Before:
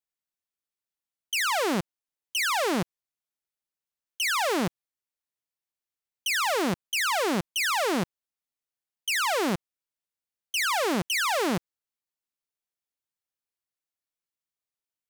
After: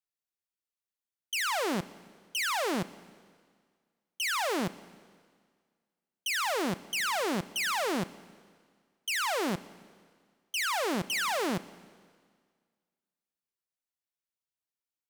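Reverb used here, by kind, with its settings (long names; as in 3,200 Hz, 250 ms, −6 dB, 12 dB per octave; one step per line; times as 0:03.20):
four-comb reverb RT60 1.8 s, combs from 30 ms, DRR 17 dB
level −4.5 dB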